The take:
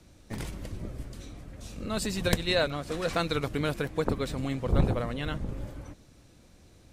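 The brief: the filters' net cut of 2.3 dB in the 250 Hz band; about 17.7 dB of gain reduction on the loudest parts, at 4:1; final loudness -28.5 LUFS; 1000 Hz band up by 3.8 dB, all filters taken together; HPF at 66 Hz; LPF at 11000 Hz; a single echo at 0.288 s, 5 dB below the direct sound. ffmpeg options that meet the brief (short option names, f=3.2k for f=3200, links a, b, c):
-af "highpass=66,lowpass=11k,equalizer=f=250:t=o:g=-3.5,equalizer=f=1k:t=o:g=5.5,acompressor=threshold=-43dB:ratio=4,aecho=1:1:288:0.562,volume=16dB"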